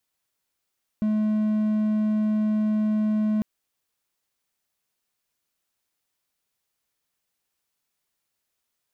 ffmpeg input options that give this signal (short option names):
-f lavfi -i "aevalsrc='0.126*(1-4*abs(mod(214*t+0.25,1)-0.5))':d=2.4:s=44100"